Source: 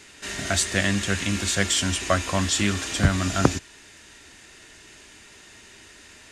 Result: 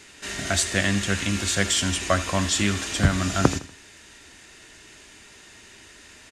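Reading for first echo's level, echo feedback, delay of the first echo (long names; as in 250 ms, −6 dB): −16.0 dB, 35%, 80 ms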